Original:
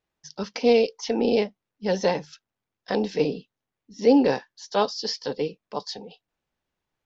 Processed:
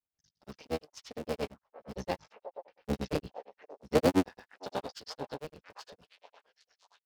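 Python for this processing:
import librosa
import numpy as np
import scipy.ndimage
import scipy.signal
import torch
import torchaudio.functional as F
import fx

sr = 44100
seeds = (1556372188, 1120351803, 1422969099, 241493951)

y = fx.cycle_switch(x, sr, every=3, mode='muted')
y = fx.doppler_pass(y, sr, speed_mps=5, closest_m=4.1, pass_at_s=3.31)
y = fx.peak_eq(y, sr, hz=70.0, db=9.5, octaves=1.3)
y = fx.echo_stepped(y, sr, ms=534, hz=710.0, octaves=0.7, feedback_pct=70, wet_db=-9.5)
y = fx.granulator(y, sr, seeds[0], grain_ms=100.0, per_s=8.7, spray_ms=100.0, spread_st=0)
y = y * librosa.db_to_amplitude(-1.5)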